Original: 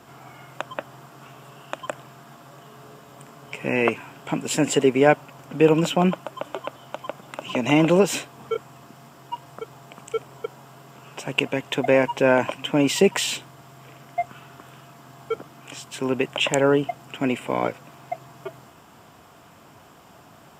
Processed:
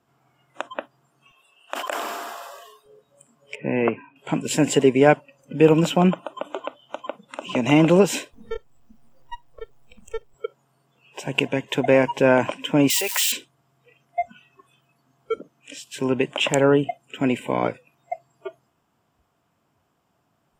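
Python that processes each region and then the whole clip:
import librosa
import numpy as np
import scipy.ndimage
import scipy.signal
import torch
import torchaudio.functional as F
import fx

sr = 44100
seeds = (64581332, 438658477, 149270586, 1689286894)

y = fx.chain(x, sr, fx.highpass(hz=450.0, slope=12),
    fx.sustainer(db_per_s=21.0), at=(1.31, 2.86))
y = fx.chain(y, sr, fx.highpass(hz=110.0, slope=24),
    fx.air_absorb(metres=480.0), at=(3.55, 4.16))
y = fx.chain(y, sr, fx.halfwave_gain(db=-12.0),
    fx.peak_eq(hz=1400.0, db=-3.5, octaves=1.2),
    fx.band_squash(depth_pct=40), at=(8.33, 10.34))
y = fx.chain(y, sr, fx.crossing_spikes(level_db=-17.5),
    fx.highpass(hz=910.0, slope=12), at=(12.9, 13.32))
y = fx.low_shelf(y, sr, hz=370.0, db=3.5)
y = fx.noise_reduce_blind(y, sr, reduce_db=21)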